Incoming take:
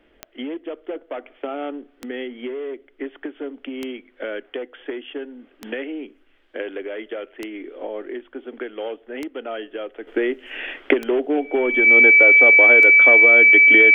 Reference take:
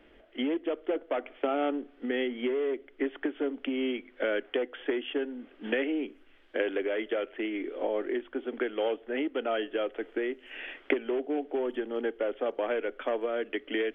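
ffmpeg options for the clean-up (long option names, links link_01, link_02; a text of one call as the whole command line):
ffmpeg -i in.wav -af "adeclick=threshold=4,bandreject=frequency=2300:width=30,asetnsamples=nb_out_samples=441:pad=0,asendcmd='10.07 volume volume -10dB',volume=0dB" out.wav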